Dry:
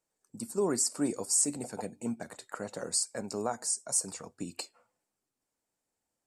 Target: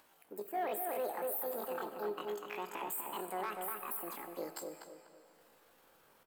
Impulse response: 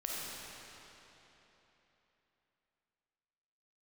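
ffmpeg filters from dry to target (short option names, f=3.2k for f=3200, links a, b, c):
-filter_complex "[0:a]acompressor=mode=upward:threshold=-43dB:ratio=2.5,aemphasis=mode=reproduction:type=cd,asoftclip=type=tanh:threshold=-23dB,asetrate=78577,aresample=44100,atempo=0.561231,lowshelf=f=89:g=-11,asplit=2[a][b];[b]adelay=246,lowpass=f=2.2k:p=1,volume=-4dB,asplit=2[c][d];[d]adelay=246,lowpass=f=2.2k:p=1,volume=0.32,asplit=2[e][f];[f]adelay=246,lowpass=f=2.2k:p=1,volume=0.32,asplit=2[g][h];[h]adelay=246,lowpass=f=2.2k:p=1,volume=0.32[i];[a][c][e][g][i]amix=inputs=5:normalize=0,asplit=2[j][k];[1:a]atrim=start_sample=2205,highshelf=f=7.9k:g=10[l];[k][l]afir=irnorm=-1:irlink=0,volume=-13dB[m];[j][m]amix=inputs=2:normalize=0,alimiter=level_in=2dB:limit=-24dB:level=0:latency=1:release=24,volume=-2dB,volume=-3.5dB"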